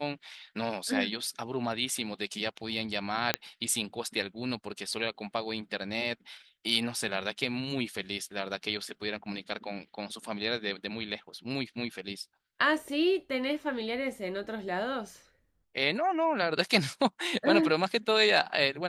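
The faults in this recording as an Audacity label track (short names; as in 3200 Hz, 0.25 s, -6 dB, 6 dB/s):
3.340000	3.340000	pop -8 dBFS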